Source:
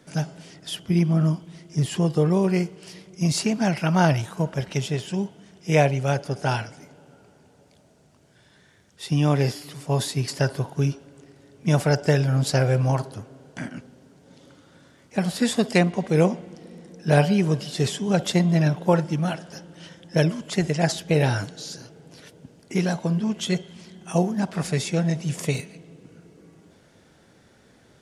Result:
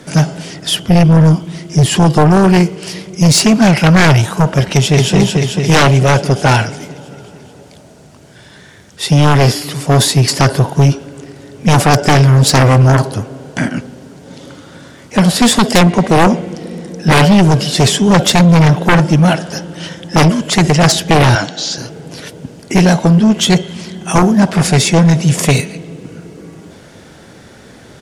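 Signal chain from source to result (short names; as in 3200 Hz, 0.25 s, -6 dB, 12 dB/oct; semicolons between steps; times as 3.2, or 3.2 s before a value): 4.71–5.15 echo throw 0.22 s, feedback 70%, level -2.5 dB; sine folder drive 15 dB, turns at -2.5 dBFS; 21.35–21.78 speaker cabinet 230–7000 Hz, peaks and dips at 430 Hz -9 dB, 740 Hz +5 dB, 3300 Hz +4 dB; gain -1.5 dB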